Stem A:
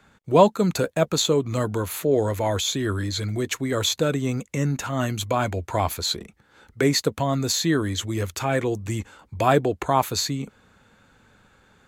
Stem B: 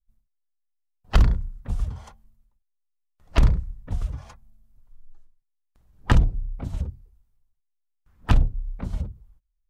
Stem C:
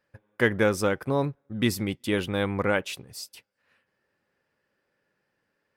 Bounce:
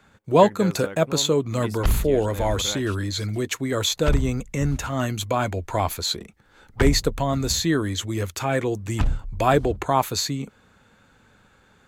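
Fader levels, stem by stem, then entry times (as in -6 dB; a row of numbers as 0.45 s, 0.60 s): 0.0 dB, -4.5 dB, -10.5 dB; 0.00 s, 0.70 s, 0.00 s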